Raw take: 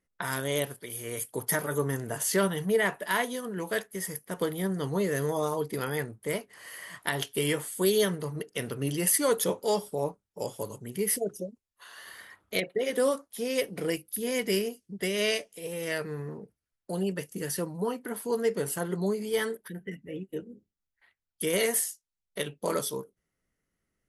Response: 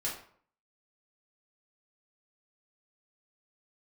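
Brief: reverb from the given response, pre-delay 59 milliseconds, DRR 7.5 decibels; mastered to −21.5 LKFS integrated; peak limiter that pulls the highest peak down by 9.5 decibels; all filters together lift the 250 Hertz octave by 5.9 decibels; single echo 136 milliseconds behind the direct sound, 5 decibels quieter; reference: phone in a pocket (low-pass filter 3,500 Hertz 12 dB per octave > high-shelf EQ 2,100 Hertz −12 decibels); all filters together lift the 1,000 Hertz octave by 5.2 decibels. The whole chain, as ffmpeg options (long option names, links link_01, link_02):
-filter_complex "[0:a]equalizer=frequency=250:width_type=o:gain=8,equalizer=frequency=1000:width_type=o:gain=8.5,alimiter=limit=-16.5dB:level=0:latency=1,aecho=1:1:136:0.562,asplit=2[link_01][link_02];[1:a]atrim=start_sample=2205,adelay=59[link_03];[link_02][link_03]afir=irnorm=-1:irlink=0,volume=-11dB[link_04];[link_01][link_04]amix=inputs=2:normalize=0,lowpass=3500,highshelf=frequency=2100:gain=-12,volume=7dB"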